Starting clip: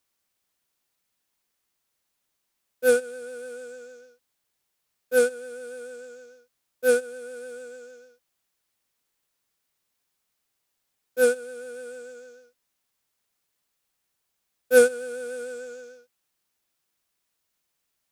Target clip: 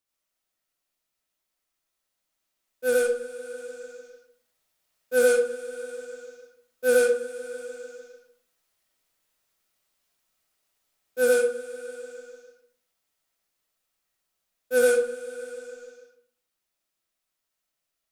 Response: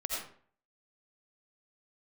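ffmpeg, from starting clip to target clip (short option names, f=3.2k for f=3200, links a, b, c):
-filter_complex "[0:a]dynaudnorm=f=370:g=17:m=11.5dB[a];[1:a]atrim=start_sample=2205[b];[a][b]afir=irnorm=-1:irlink=0,volume=-7.5dB"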